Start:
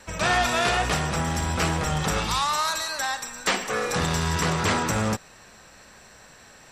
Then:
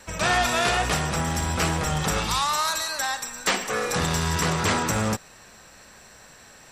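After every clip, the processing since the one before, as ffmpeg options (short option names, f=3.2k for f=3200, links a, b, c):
-af "highshelf=f=8.8k:g=6"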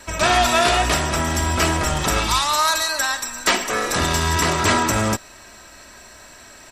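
-af "aecho=1:1:3.1:0.51,volume=4.5dB"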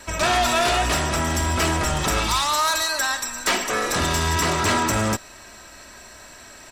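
-af "asoftclip=type=tanh:threshold=-14.5dB"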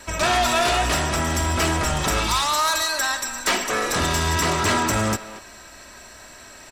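-filter_complex "[0:a]asplit=2[a][b];[b]adelay=230,highpass=300,lowpass=3.4k,asoftclip=type=hard:threshold=-24dB,volume=-11dB[c];[a][c]amix=inputs=2:normalize=0"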